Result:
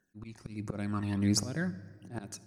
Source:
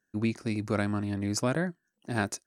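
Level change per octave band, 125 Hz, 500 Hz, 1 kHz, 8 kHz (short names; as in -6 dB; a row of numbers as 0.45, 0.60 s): -2.5, -10.0, -9.0, +0.5 dB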